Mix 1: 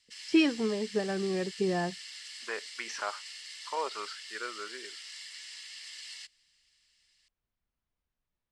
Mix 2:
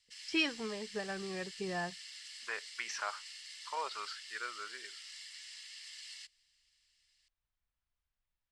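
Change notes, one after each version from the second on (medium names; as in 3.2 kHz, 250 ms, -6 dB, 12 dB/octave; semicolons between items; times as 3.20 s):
background -4.0 dB; master: add peaking EQ 290 Hz -12.5 dB 2.4 oct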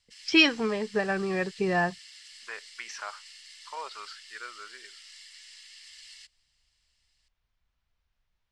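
first voice +12.0 dB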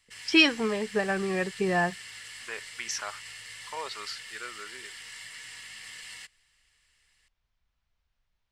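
second voice: remove band-pass filter 1.2 kHz, Q 0.63; background: remove band-pass filter 4.8 kHz, Q 1.7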